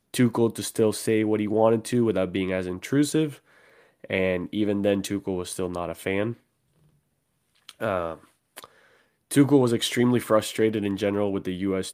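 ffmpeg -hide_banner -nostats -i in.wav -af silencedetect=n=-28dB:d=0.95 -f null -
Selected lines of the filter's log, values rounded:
silence_start: 6.32
silence_end: 7.69 | silence_duration: 1.37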